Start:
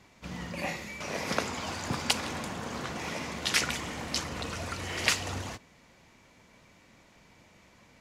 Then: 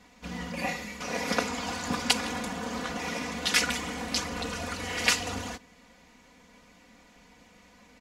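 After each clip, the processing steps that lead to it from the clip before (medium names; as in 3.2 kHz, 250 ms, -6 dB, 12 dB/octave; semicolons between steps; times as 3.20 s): comb 4.1 ms, depth 86%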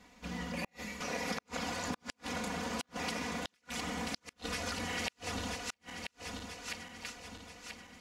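backward echo that repeats 492 ms, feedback 71%, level -9 dB; compression 6:1, threshold -30 dBFS, peak gain reduction 12 dB; inverted gate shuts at -21 dBFS, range -39 dB; trim -3 dB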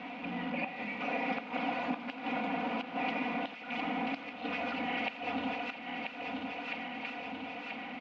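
jump at every zero crossing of -37.5 dBFS; cabinet simulation 240–2800 Hz, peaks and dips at 270 Hz +9 dB, 390 Hz -9 dB, 760 Hz +7 dB, 1.1 kHz -4 dB, 1.7 kHz -7 dB, 2.5 kHz +6 dB; delay 84 ms -17 dB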